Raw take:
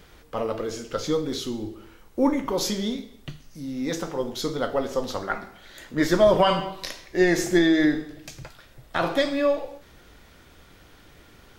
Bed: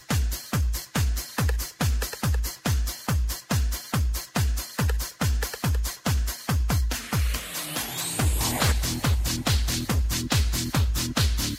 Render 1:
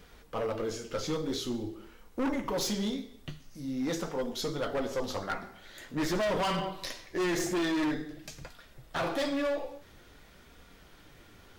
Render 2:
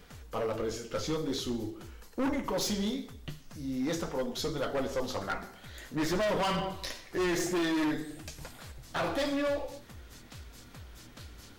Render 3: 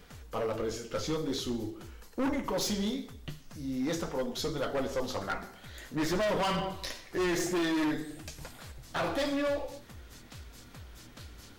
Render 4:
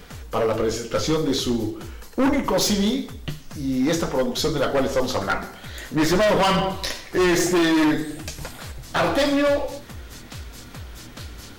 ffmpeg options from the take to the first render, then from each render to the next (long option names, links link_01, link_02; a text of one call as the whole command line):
ffmpeg -i in.wav -af "flanger=delay=4.1:depth=7.6:regen=-39:speed=0.47:shape=sinusoidal,asoftclip=type=hard:threshold=-27dB" out.wav
ffmpeg -i in.wav -i bed.wav -filter_complex "[1:a]volume=-26dB[link_01];[0:a][link_01]amix=inputs=2:normalize=0" out.wav
ffmpeg -i in.wav -af anull out.wav
ffmpeg -i in.wav -af "volume=11dB" out.wav